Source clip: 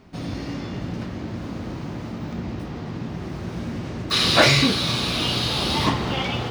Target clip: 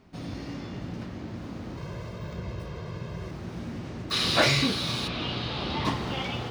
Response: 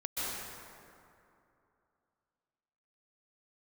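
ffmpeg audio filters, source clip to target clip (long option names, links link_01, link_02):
-filter_complex "[0:a]asettb=1/sr,asplit=3[link_01][link_02][link_03];[link_01]atrim=end=1.774[link_04];[link_02]atrim=start=1.77:end=3.31,asetpts=PTS-STARTPTS,afade=type=in:duration=0.004:curve=qsin,afade=type=out:start_time=1.536:duration=0.004:curve=qsin,aecho=1:1:1.9:0.92,atrim=end_sample=67914[link_05];[link_03]atrim=start=3.306[link_06];[link_04][link_05]acrossfade=duration=0.004:curve1=hsin:curve2=qsin[link_07];[link_07][link_06]acrossfade=duration=0.004:curve1=qsin:curve2=hsin,asplit=3[link_08][link_09][link_10];[link_08]afade=type=out:start_time=5.07:duration=0.02[link_11];[link_09]lowpass=3200,afade=type=in:start_time=5.07:duration=0.02,afade=type=out:start_time=5.84:duration=0.02[link_12];[link_10]afade=type=in:start_time=5.84:duration=0.02[link_13];[link_11][link_12][link_13]amix=inputs=3:normalize=0,volume=-6.5dB"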